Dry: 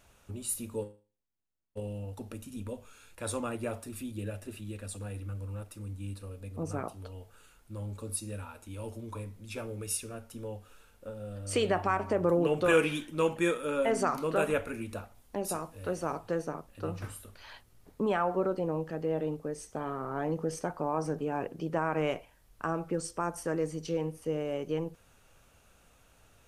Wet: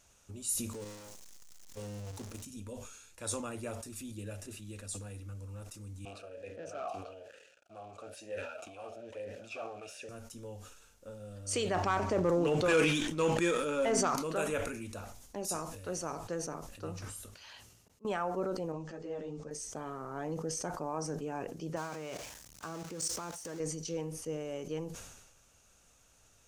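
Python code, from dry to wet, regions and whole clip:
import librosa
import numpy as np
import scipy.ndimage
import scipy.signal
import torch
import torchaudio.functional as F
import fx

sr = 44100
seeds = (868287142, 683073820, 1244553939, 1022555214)

y = fx.chain(x, sr, fx.zero_step(step_db=-37.5),
    fx.level_steps(step_db=9), at=(0.73, 2.45))
y = fx.chain(y, sr, fx.leveller(passes=5),
    fx.vowel_sweep(vowels='a-e', hz=1.1), at=(6.05, 10.09))
y = fx.chain(y, sr, fx.high_shelf(hz=8600.0, db=-11.0),
    fx.leveller(passes=1),
    fx.sustainer(db_per_s=40.0), at=(11.74, 14.16))
y = fx.chain(y, sr, fx.highpass(hz=66.0, slope=12),
    fx.peak_eq(hz=2800.0, db=8.0, octaves=0.22),
    fx.auto_swell(attack_ms=447.0), at=(17.33, 18.05))
y = fx.chain(y, sr, fx.lowpass(hz=7500.0, slope=24),
    fx.ensemble(), at=(18.72, 19.51))
y = fx.chain(y, sr, fx.zero_step(step_db=-35.5),
    fx.highpass(hz=62.0, slope=12),
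    fx.level_steps(step_db=18), at=(21.76, 23.6))
y = fx.peak_eq(y, sr, hz=6400.0, db=12.5, octaves=1.0)
y = fx.sustainer(y, sr, db_per_s=49.0)
y = y * librosa.db_to_amplitude(-6.0)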